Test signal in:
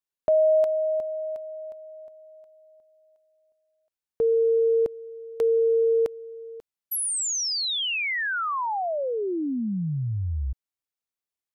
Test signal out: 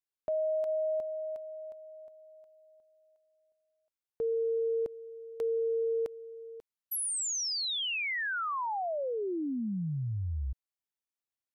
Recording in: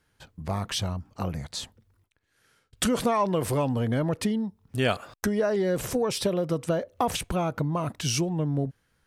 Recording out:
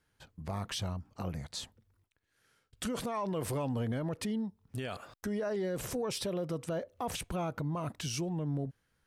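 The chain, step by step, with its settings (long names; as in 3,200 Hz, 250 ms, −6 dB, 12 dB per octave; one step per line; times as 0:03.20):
brickwall limiter −21 dBFS
level −6 dB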